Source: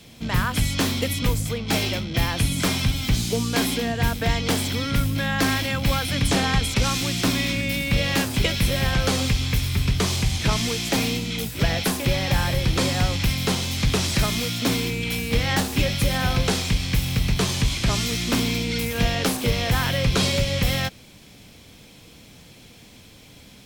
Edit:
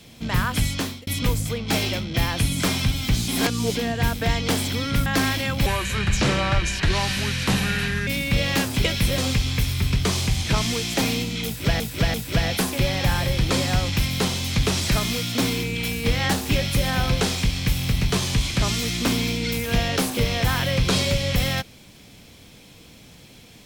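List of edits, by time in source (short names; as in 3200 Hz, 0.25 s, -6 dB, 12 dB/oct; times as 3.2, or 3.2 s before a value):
0.66–1.07 fade out
3.28–3.75 reverse
5.06–5.31 cut
5.91–7.67 speed 73%
8.78–9.13 cut
11.41–11.75 loop, 3 plays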